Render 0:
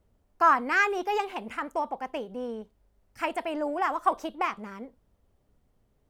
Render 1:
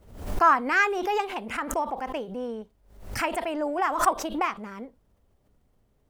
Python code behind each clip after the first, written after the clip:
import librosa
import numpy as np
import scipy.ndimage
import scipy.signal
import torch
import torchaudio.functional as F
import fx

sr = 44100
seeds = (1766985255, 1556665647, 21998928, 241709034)

y = fx.pre_swell(x, sr, db_per_s=91.0)
y = y * librosa.db_to_amplitude(1.5)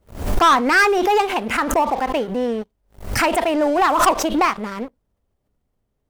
y = fx.leveller(x, sr, passes=3)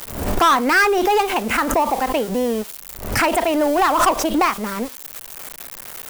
y = x + 0.5 * 10.0 ** (-22.0 / 20.0) * np.diff(np.sign(x), prepend=np.sign(x[:1]))
y = fx.band_squash(y, sr, depth_pct=40)